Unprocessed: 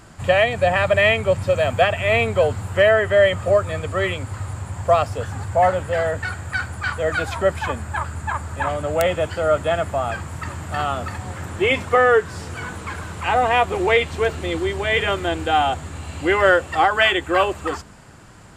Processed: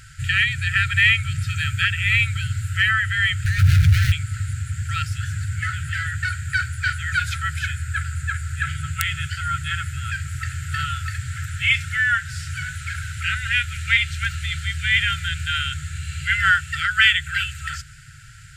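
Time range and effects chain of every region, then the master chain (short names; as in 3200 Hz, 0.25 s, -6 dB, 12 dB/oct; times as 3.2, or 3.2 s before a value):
3.45–4.12 median filter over 41 samples + fast leveller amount 100%
whole clip: FFT band-reject 160–1300 Hz; dynamic EQ 510 Hz, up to -6 dB, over -42 dBFS, Q 0.78; gain +3.5 dB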